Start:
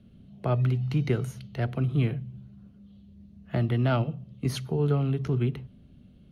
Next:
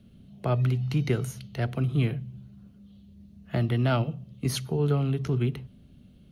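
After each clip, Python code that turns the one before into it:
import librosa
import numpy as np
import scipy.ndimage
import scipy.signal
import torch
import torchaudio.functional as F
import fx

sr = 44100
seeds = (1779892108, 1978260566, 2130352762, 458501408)

y = fx.high_shelf(x, sr, hz=4100.0, db=8.0)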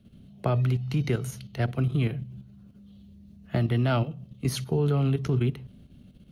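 y = fx.level_steps(x, sr, step_db=9)
y = F.gain(torch.from_numpy(y), 4.0).numpy()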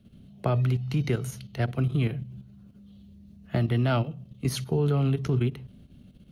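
y = fx.end_taper(x, sr, db_per_s=370.0)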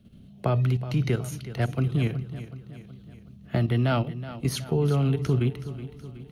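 y = fx.echo_feedback(x, sr, ms=372, feedback_pct=53, wet_db=-14.0)
y = F.gain(torch.from_numpy(y), 1.0).numpy()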